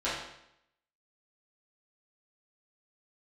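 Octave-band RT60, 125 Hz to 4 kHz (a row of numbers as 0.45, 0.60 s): 0.80, 0.80, 0.80, 0.75, 0.75, 0.70 s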